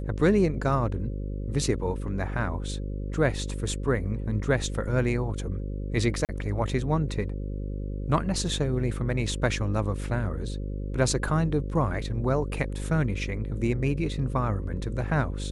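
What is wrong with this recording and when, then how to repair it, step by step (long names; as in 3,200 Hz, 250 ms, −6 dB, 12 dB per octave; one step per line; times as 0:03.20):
mains buzz 50 Hz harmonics 11 −32 dBFS
0:06.25–0:06.29: drop-out 38 ms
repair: hum removal 50 Hz, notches 11
repair the gap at 0:06.25, 38 ms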